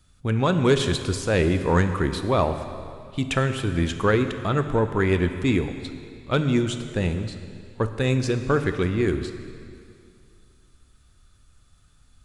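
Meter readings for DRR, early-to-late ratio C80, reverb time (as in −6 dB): 8.0 dB, 10.0 dB, 2.4 s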